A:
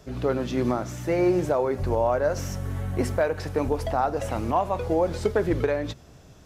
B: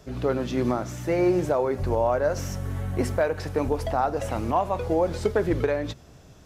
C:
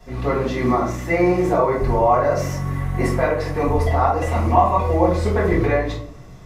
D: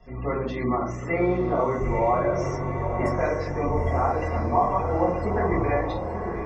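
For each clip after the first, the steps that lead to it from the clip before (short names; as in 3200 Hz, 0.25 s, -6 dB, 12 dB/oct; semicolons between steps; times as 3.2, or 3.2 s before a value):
nothing audible
small resonant body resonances 1100/2000 Hz, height 13 dB, ringing for 30 ms; reverb RT60 0.55 s, pre-delay 3 ms, DRR -7.5 dB; gain -8.5 dB
spectral gate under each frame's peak -30 dB strong; diffused feedback echo 0.901 s, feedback 53%, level -6.5 dB; gain -6.5 dB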